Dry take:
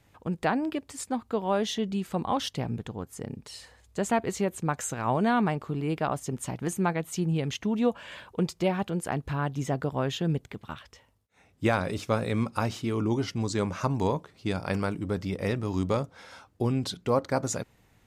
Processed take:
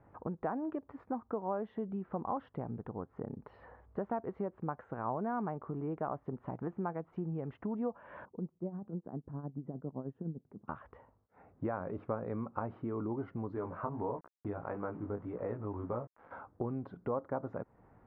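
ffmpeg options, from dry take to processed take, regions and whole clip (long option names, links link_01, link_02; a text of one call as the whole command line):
ffmpeg -i in.wav -filter_complex "[0:a]asettb=1/sr,asplit=3[link_01][link_02][link_03];[link_01]atrim=end=8.254[link_04];[link_02]atrim=start=8.25:end=10.68,asetpts=PTS-STARTPTS,afade=type=in:duration=0.004:curve=qsin,afade=type=out:start_time=2.426:duration=0.004:curve=qsin,bandpass=frequency=210:width_type=q:width=1.4,tremolo=f=9.8:d=0.72[link_05];[link_03]atrim=start=10.676[link_06];[link_04][link_05]acrossfade=duration=0.004:curve1=hsin:curve2=qsin[link_07];[link_07][link_06]acrossfade=duration=0.004:curve1=qsin:curve2=hsin,asettb=1/sr,asplit=3[link_08][link_09][link_10];[link_08]atrim=end=13.554[link_11];[link_09]atrim=start=13.55:end=16.31,asetpts=PTS-STARTPTS,afade=type=in:duration=0.004:curve=qsin,afade=type=out:start_time=2.756:duration=0.004:curve=qsin,bandreject=frequency=190:width=6.2,aeval=exprs='val(0)*gte(abs(val(0)),0.00708)':channel_layout=same,flanger=delay=16:depth=3.9:speed=1.6[link_12];[link_10]atrim=start=16.306[link_13];[link_11][link_12]acrossfade=duration=0.004:curve1=hsin:curve2=qsin[link_14];[link_14][link_13]acrossfade=duration=0.004:curve1=qsin:curve2=hsin,acompressor=threshold=-41dB:ratio=3,lowpass=frequency=1300:width=0.5412,lowpass=frequency=1300:width=1.3066,lowshelf=frequency=190:gain=-8,volume=5.5dB" out.wav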